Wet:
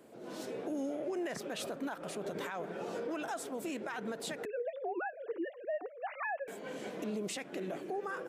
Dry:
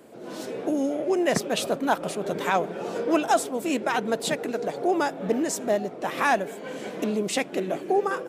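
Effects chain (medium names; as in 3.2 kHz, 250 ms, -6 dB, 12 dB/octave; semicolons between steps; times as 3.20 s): 4.45–6.48 s: formants replaced by sine waves; dynamic bell 1.6 kHz, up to +6 dB, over -40 dBFS, Q 1.8; compression, threshold -22 dBFS, peak gain reduction 8 dB; peak limiter -22.5 dBFS, peak gain reduction 10.5 dB; trim -7.5 dB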